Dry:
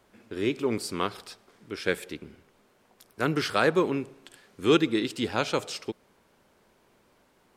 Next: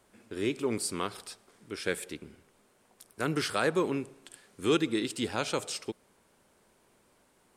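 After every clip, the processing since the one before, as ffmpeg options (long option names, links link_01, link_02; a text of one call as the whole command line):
ffmpeg -i in.wav -filter_complex "[0:a]equalizer=frequency=9000:width_type=o:width=0.73:gain=9.5,asplit=2[link_01][link_02];[link_02]alimiter=limit=-17dB:level=0:latency=1:release=71,volume=-1dB[link_03];[link_01][link_03]amix=inputs=2:normalize=0,volume=-8.5dB" out.wav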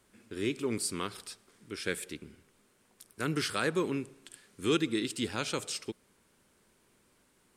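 ffmpeg -i in.wav -af "equalizer=frequency=710:width_type=o:width=1.2:gain=-7.5" out.wav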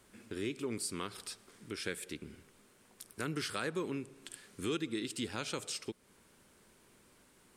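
ffmpeg -i in.wav -af "acompressor=threshold=-45dB:ratio=2,volume=3.5dB" out.wav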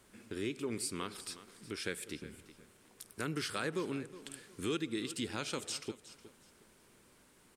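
ffmpeg -i in.wav -af "aecho=1:1:365|730|1095:0.168|0.042|0.0105" out.wav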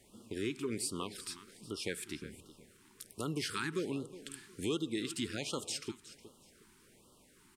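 ffmpeg -i in.wav -af "afftfilt=real='re*(1-between(b*sr/1024,550*pow(2000/550,0.5+0.5*sin(2*PI*1.3*pts/sr))/1.41,550*pow(2000/550,0.5+0.5*sin(2*PI*1.3*pts/sr))*1.41))':imag='im*(1-between(b*sr/1024,550*pow(2000/550,0.5+0.5*sin(2*PI*1.3*pts/sr))/1.41,550*pow(2000/550,0.5+0.5*sin(2*PI*1.3*pts/sr))*1.41))':win_size=1024:overlap=0.75,volume=1dB" out.wav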